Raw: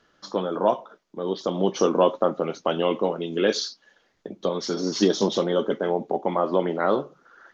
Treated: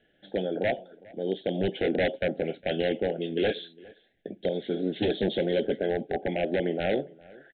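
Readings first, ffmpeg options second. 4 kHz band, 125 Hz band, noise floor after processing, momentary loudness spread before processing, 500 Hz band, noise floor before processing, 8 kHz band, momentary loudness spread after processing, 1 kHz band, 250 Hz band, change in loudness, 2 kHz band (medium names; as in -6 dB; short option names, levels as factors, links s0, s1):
-5.5 dB, -2.0 dB, -67 dBFS, 10 LU, -4.5 dB, -66 dBFS, no reading, 8 LU, -11.0 dB, -4.0 dB, -4.5 dB, +1.5 dB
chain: -filter_complex "[0:a]aresample=8000,aeval=exprs='0.168*(abs(mod(val(0)/0.168+3,4)-2)-1)':c=same,aresample=44100,asuperstop=centerf=1100:order=8:qfactor=1.4,asplit=2[s0][s1];[s1]adelay=408.2,volume=0.0708,highshelf=f=4000:g=-9.18[s2];[s0][s2]amix=inputs=2:normalize=0,volume=0.794"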